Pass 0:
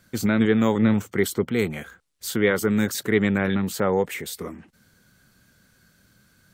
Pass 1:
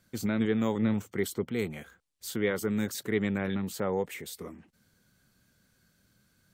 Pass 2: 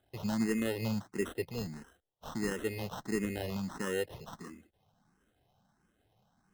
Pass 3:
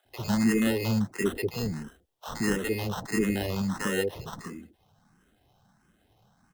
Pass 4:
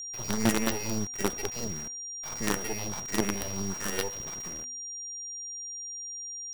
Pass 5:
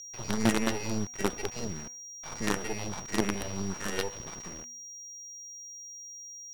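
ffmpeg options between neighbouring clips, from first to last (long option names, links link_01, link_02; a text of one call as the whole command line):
ffmpeg -i in.wav -af "equalizer=frequency=1500:width_type=o:width=0.77:gain=-3,volume=-8dB" out.wav
ffmpeg -i in.wav -filter_complex "[0:a]acrusher=samples=19:mix=1:aa=0.000001,asplit=2[link_01][link_02];[link_02]afreqshift=1.5[link_03];[link_01][link_03]amix=inputs=2:normalize=1,volume=-2dB" out.wav
ffmpeg -i in.wav -filter_complex "[0:a]acrossover=split=540[link_01][link_02];[link_01]adelay=50[link_03];[link_03][link_02]amix=inputs=2:normalize=0,volume=8dB" out.wav
ffmpeg -i in.wav -af "acrusher=bits=4:dc=4:mix=0:aa=0.000001,aeval=exprs='val(0)+0.0178*sin(2*PI*5700*n/s)':channel_layout=same,bandreject=frequency=245.2:width_type=h:width=4,bandreject=frequency=490.4:width_type=h:width=4,bandreject=frequency=735.6:width_type=h:width=4,bandreject=frequency=980.8:width_type=h:width=4,bandreject=frequency=1226:width_type=h:width=4,bandreject=frequency=1471.2:width_type=h:width=4,bandreject=frequency=1716.4:width_type=h:width=4,bandreject=frequency=1961.6:width_type=h:width=4,bandreject=frequency=2206.8:width_type=h:width=4,bandreject=frequency=2452:width_type=h:width=4,bandreject=frequency=2697.2:width_type=h:width=4,bandreject=frequency=2942.4:width_type=h:width=4,volume=-1.5dB" out.wav
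ffmpeg -i in.wav -af "adynamicsmooth=sensitivity=7.5:basefreq=3900" out.wav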